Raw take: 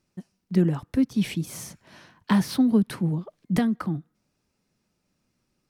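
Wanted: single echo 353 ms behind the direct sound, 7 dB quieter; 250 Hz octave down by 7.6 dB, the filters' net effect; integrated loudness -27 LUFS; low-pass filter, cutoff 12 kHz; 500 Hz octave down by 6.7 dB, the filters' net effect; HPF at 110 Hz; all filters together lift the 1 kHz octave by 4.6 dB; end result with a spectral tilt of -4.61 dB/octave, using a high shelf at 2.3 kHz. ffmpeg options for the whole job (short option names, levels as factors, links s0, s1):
-af "highpass=110,lowpass=12000,equalizer=f=250:t=o:g=-8.5,equalizer=f=500:t=o:g=-7,equalizer=f=1000:t=o:g=7,highshelf=f=2300:g=4,aecho=1:1:353:0.447,volume=1.41"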